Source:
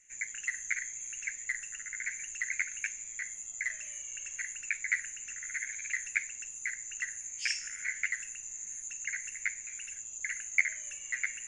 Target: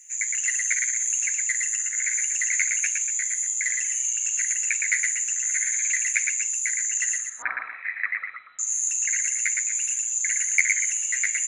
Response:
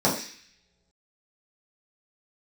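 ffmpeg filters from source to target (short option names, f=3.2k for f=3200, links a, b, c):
-filter_complex "[0:a]crystalizer=i=9:c=0,asettb=1/sr,asplit=3[a][b][c];[a]atrim=end=7.184[d];[b]atrim=start=7.18:end=8.59,asetpts=PTS-STARTPTS,afade=t=in:d=0.004:c=qsin,afade=t=out:st=1.406:d=0.004:c=qsin,lowpass=f=3.4k:t=q:w=0.5098,lowpass=f=3.4k:t=q:w=0.6013,lowpass=f=3.4k:t=q:w=0.9,lowpass=f=3.4k:t=q:w=2.563,afreqshift=-4000[e];[c]atrim=start=8.586[f];[d][e]acrossfade=d=0.004:c1=hsin:c2=qsin[g];[g][f]acrossfade=d=0.004:c1=qsin:c2=hsin,aecho=1:1:113.7|239.1:0.631|0.251,volume=-4dB"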